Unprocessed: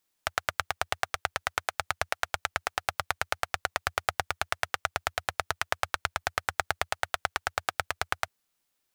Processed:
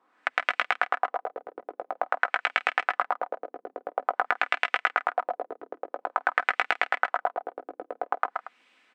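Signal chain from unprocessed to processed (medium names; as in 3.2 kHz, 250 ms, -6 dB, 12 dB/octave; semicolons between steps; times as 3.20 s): companding laws mixed up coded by mu; steep high-pass 210 Hz 36 dB/octave; peaking EQ 8 kHz +8 dB 0.21 oct; comb 4 ms, depth 34%; in parallel at +2 dB: compression, threshold -37 dBFS, peak gain reduction 15.5 dB; on the sum: peak limiter -5 dBFS, peak gain reduction 3.5 dB; LFO low-pass sine 0.49 Hz 370–2600 Hz; on a send: multi-tap echo 127/130/157/232 ms -7/-11.5/-19.5/-15.5 dB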